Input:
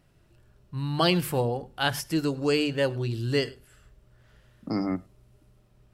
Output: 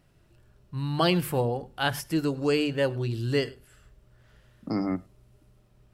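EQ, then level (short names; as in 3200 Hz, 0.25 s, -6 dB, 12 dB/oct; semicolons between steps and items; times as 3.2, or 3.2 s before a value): dynamic EQ 5500 Hz, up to -4 dB, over -45 dBFS, Q 0.73; 0.0 dB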